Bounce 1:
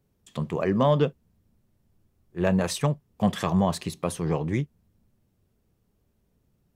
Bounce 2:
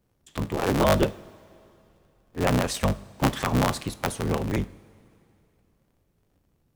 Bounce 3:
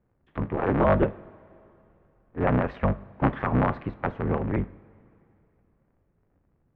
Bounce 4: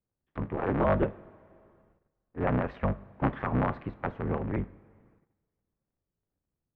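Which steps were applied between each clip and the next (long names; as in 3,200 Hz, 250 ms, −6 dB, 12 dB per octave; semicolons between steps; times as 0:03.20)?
sub-harmonics by changed cycles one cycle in 3, inverted; coupled-rooms reverb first 0.52 s, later 2.9 s, from −15 dB, DRR 14 dB
low-pass filter 2,000 Hz 24 dB per octave
noise gate −58 dBFS, range −14 dB; level −4.5 dB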